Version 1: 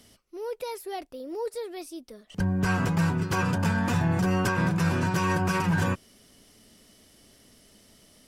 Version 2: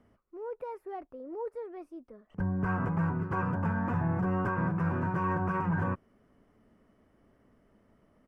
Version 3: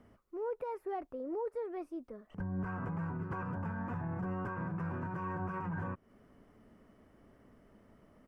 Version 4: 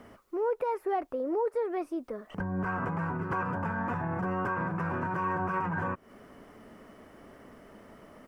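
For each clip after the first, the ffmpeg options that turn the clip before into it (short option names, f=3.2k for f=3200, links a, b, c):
-af "firequalizer=gain_entry='entry(750,0);entry(1100,3);entry(3800,-27)':delay=0.05:min_phase=1,volume=-5dB"
-filter_complex "[0:a]asplit=2[a][b];[b]acompressor=threshold=-38dB:ratio=6,volume=-2dB[c];[a][c]amix=inputs=2:normalize=0,alimiter=level_in=4.5dB:limit=-24dB:level=0:latency=1:release=184,volume=-4.5dB,volume=-2dB"
-filter_complex "[0:a]lowshelf=f=240:g=-11,asplit=2[a][b];[b]acompressor=threshold=-48dB:ratio=6,volume=0.5dB[c];[a][c]amix=inputs=2:normalize=0,volume=8dB"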